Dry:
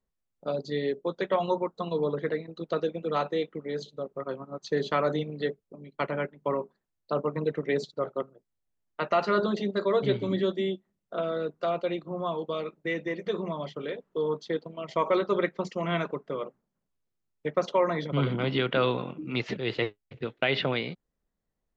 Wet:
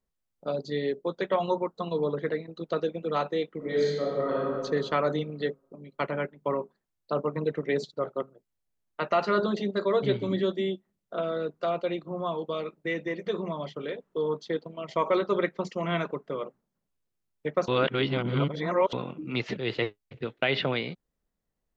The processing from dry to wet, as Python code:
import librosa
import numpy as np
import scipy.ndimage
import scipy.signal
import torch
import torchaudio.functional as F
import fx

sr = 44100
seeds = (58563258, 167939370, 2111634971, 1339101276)

y = fx.reverb_throw(x, sr, start_s=3.57, length_s=0.92, rt60_s=1.7, drr_db=-6.5)
y = fx.edit(y, sr, fx.reverse_span(start_s=17.68, length_s=1.25), tone=tone)